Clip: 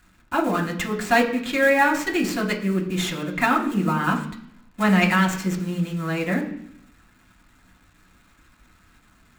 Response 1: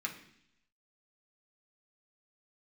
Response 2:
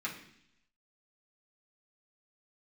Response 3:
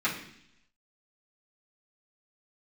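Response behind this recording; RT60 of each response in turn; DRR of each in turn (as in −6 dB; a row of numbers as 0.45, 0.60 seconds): 1; 0.70, 0.70, 0.70 seconds; −1.0, −6.0, −10.5 decibels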